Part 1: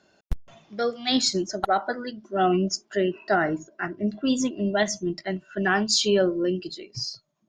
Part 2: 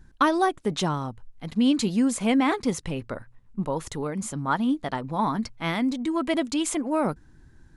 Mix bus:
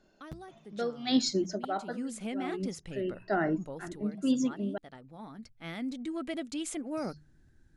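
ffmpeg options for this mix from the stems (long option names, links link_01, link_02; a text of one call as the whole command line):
ffmpeg -i stem1.wav -i stem2.wav -filter_complex "[0:a]highpass=100,equalizer=frequency=210:width_type=o:width=2.8:gain=7.5,bandreject=frequency=60:width_type=h:width=6,bandreject=frequency=120:width_type=h:width=6,bandreject=frequency=180:width_type=h:width=6,volume=-8.5dB,asplit=3[link_01][link_02][link_03];[link_01]atrim=end=4.78,asetpts=PTS-STARTPTS,afade=type=out:start_time=4.776:duration=0.004:curve=hsin[link_04];[link_02]atrim=start=4.78:end=6.97,asetpts=PTS-STARTPTS,volume=0[link_05];[link_03]atrim=start=6.97,asetpts=PTS-STARTPTS,afade=type=in:duration=0.004:curve=hsin[link_06];[link_04][link_05][link_06]concat=n=3:v=0:a=1[link_07];[1:a]equalizer=frequency=1000:width=4.3:gain=-11.5,bandreject=frequency=50:width_type=h:width=6,bandreject=frequency=100:width_type=h:width=6,bandreject=frequency=150:width_type=h:width=6,alimiter=limit=-15.5dB:level=0:latency=1:release=374,volume=-2dB,afade=type=in:start_time=1.77:duration=0.47:silence=0.266073,afade=type=out:start_time=3.52:duration=0.77:silence=0.421697,afade=type=in:start_time=5.38:duration=0.61:silence=0.354813,asplit=2[link_08][link_09];[link_09]apad=whole_len=330207[link_10];[link_07][link_10]sidechaincompress=threshold=-47dB:ratio=5:attack=16:release=390[link_11];[link_11][link_08]amix=inputs=2:normalize=0" out.wav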